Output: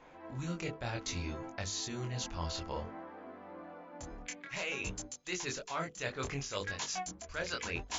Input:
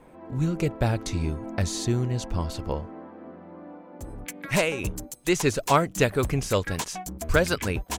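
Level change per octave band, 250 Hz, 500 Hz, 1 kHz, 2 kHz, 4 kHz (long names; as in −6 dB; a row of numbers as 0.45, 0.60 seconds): −14.5, −15.0, −12.0, −9.5, −6.0 decibels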